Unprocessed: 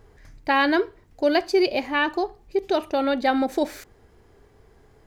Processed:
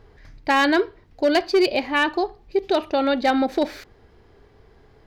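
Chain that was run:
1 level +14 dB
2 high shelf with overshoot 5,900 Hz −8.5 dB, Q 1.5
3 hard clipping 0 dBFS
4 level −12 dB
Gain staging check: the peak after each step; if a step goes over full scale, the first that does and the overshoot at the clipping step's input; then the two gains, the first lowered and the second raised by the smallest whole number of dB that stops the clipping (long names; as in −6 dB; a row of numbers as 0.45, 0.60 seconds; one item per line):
+5.0, +5.5, 0.0, −12.0 dBFS
step 1, 5.5 dB
step 1 +8 dB, step 4 −6 dB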